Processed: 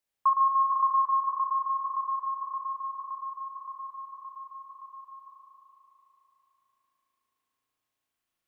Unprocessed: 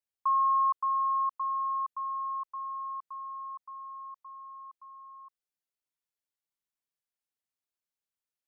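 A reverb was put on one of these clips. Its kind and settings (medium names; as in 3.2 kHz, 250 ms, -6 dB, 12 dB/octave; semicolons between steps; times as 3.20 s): spring tank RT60 3.6 s, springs 36 ms, chirp 70 ms, DRR -4 dB; trim +5.5 dB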